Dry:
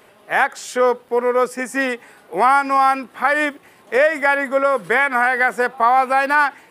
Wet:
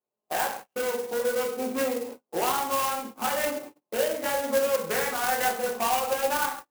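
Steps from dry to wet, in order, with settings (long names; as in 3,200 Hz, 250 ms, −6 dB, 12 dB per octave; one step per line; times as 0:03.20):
adaptive Wiener filter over 25 samples
mains-hum notches 50/100/150/200/250/300/350/400/450 Hz
on a send: feedback echo with a low-pass in the loop 95 ms, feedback 64%, low-pass 1,100 Hz, level −23.5 dB
on the sum: dynamic equaliser 520 Hz, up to +4 dB, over −29 dBFS, Q 4.5
downward compressor 3 to 1, threshold −27 dBFS, peak gain reduction 13 dB
hard clipping −24.5 dBFS, distortion −11 dB
rectangular room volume 110 cubic metres, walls mixed, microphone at 0.96 metres
noise gate −36 dBFS, range −39 dB
loudspeaker in its box 130–3,800 Hz, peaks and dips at 170 Hz −4 dB, 270 Hz −4 dB, 590 Hz −4 dB, 2,800 Hz +9 dB
converter with an unsteady clock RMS 0.065 ms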